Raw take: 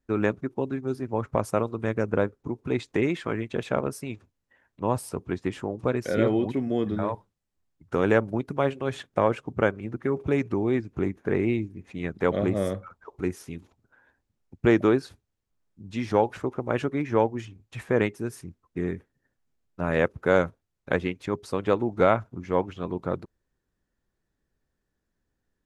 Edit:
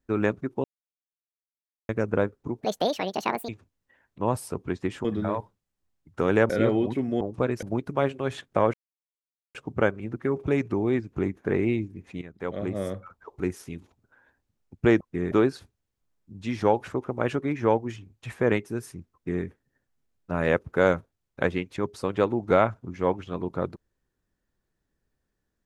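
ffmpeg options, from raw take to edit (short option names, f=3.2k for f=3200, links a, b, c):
-filter_complex "[0:a]asplit=13[a][b][c][d][e][f][g][h][i][j][k][l][m];[a]atrim=end=0.64,asetpts=PTS-STARTPTS,afade=t=out:st=0.636:d=0.004:c=hsin[n];[b]atrim=start=0.64:end=1.89,asetpts=PTS-STARTPTS,volume=0[o];[c]atrim=start=1.89:end=2.614,asetpts=PTS-STARTPTS,afade=t=in:d=0.004:c=hsin[p];[d]atrim=start=2.61:end=4.1,asetpts=PTS-STARTPTS,asetrate=74970,aresample=44100,atrim=end_sample=38652,asetpts=PTS-STARTPTS[q];[e]atrim=start=4.096:end=5.662[r];[f]atrim=start=6.788:end=8.242[s];[g]atrim=start=6.078:end=6.792[t];[h]atrim=start=5.658:end=6.082[u];[i]atrim=start=8.238:end=9.35,asetpts=PTS-STARTPTS,afade=t=out:st=1.108:d=0.004:c=hsin,apad=pad_dur=0.81[v];[j]atrim=start=9.35:end=12.02,asetpts=PTS-STARTPTS,afade=t=in:d=0.004:c=hsin,afade=t=out:st=2.666:d=0.004:c=hsin:silence=0.188365[w];[k]atrim=start=12.02:end=14.812,asetpts=PTS-STARTPTS,afade=t=in:d=1.08:silence=0.188365[x];[l]atrim=start=18.628:end=18.942[y];[m]atrim=start=14.808[z];[n][o][p]concat=n=3:v=0:a=1[aa];[aa][q]acrossfade=d=0.004:c1=hsin:c2=hsin[ab];[ab][r]acrossfade=d=0.004:c1=hsin:c2=hsin[ac];[ac][s]acrossfade=d=0.004:c1=hsin:c2=hsin[ad];[ad][t]acrossfade=d=0.004:c1=hsin:c2=hsin[ae];[ae][u]acrossfade=d=0.004:c1=hsin:c2=hsin[af];[v][w][x]concat=n=3:v=0:a=1[ag];[af][ag]acrossfade=d=0.004:c1=hsin:c2=hsin[ah];[ah][y]acrossfade=d=0.004:c1=hsin:c2=hsin[ai];[ai][z]acrossfade=d=0.004:c1=hsin:c2=hsin"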